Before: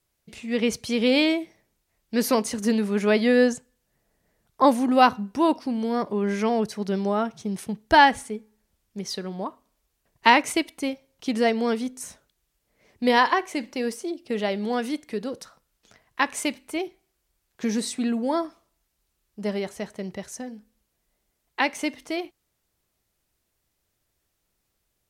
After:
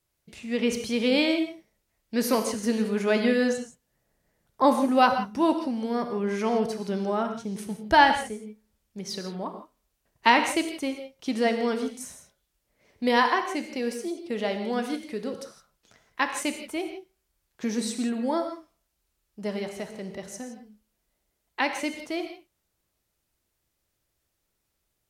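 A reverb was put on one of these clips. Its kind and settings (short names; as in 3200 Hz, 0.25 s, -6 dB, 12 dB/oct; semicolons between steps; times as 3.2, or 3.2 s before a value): non-linear reverb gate 0.19 s flat, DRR 6 dB; gain -3 dB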